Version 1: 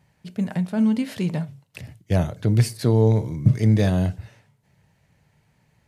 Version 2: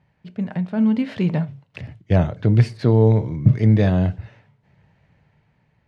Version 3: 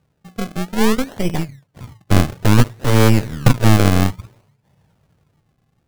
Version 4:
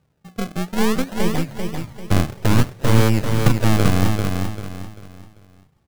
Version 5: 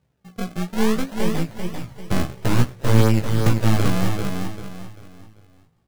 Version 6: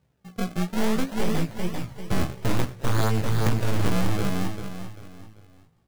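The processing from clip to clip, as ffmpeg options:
ffmpeg -i in.wav -af "lowpass=3000,dynaudnorm=framelen=240:gausssize=9:maxgain=11.5dB,volume=-1dB" out.wav
ffmpeg -i in.wav -af "acrusher=samples=32:mix=1:aa=0.000001:lfo=1:lforange=32:lforate=0.58,aeval=exprs='0.794*(cos(1*acos(clip(val(0)/0.794,-1,1)))-cos(1*PI/2))+0.282*(cos(6*acos(clip(val(0)/0.794,-1,1)))-cos(6*PI/2))':channel_layout=same,volume=-1dB" out.wav
ffmpeg -i in.wav -filter_complex "[0:a]acompressor=threshold=-15dB:ratio=1.5,asplit=2[link_01][link_02];[link_02]aecho=0:1:392|784|1176|1568:0.562|0.191|0.065|0.0221[link_03];[link_01][link_03]amix=inputs=2:normalize=0,volume=-1dB" out.wav
ffmpeg -i in.wav -af "flanger=delay=15.5:depth=2.9:speed=0.45" out.wav
ffmpeg -i in.wav -af "asoftclip=type=hard:threshold=-15.5dB" out.wav

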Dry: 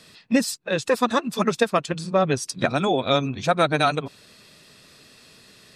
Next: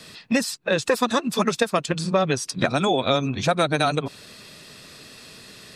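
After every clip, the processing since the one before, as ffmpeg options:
ffmpeg -i in.wav -filter_complex "[0:a]acrossover=split=680|2000|4100[link_01][link_02][link_03][link_04];[link_01]acompressor=threshold=-28dB:ratio=4[link_05];[link_02]acompressor=threshold=-32dB:ratio=4[link_06];[link_03]acompressor=threshold=-40dB:ratio=4[link_07];[link_04]acompressor=threshold=-38dB:ratio=4[link_08];[link_05][link_06][link_07][link_08]amix=inputs=4:normalize=0,volume=6.5dB" out.wav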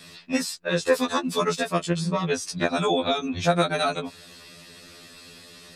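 ffmpeg -i in.wav -af "afftfilt=real='re*2*eq(mod(b,4),0)':imag='im*2*eq(mod(b,4),0)':win_size=2048:overlap=0.75" out.wav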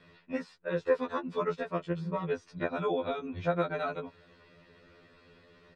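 ffmpeg -i in.wav -af "lowpass=1800,bandreject=frequency=840:width=16,aecho=1:1:2.1:0.31,volume=-7.5dB" out.wav

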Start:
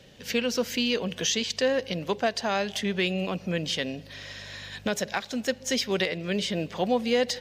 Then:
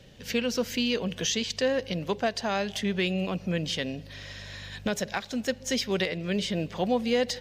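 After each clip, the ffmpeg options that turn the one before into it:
ffmpeg -i in.wav -af "lowshelf=frequency=130:gain=9,volume=-2dB" out.wav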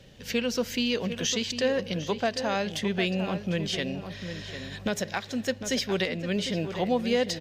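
ffmpeg -i in.wav -filter_complex "[0:a]asplit=2[link_01][link_02];[link_02]adelay=751,lowpass=frequency=2500:poles=1,volume=-9dB,asplit=2[link_03][link_04];[link_04]adelay=751,lowpass=frequency=2500:poles=1,volume=0.26,asplit=2[link_05][link_06];[link_06]adelay=751,lowpass=frequency=2500:poles=1,volume=0.26[link_07];[link_01][link_03][link_05][link_07]amix=inputs=4:normalize=0" out.wav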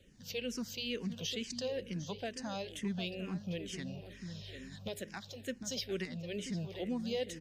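ffmpeg -i in.wav -filter_complex "[0:a]equalizer=frequency=1100:width=0.51:gain=-8.5,asplit=2[link_01][link_02];[link_02]afreqshift=-2.2[link_03];[link_01][link_03]amix=inputs=2:normalize=1,volume=-5dB" out.wav

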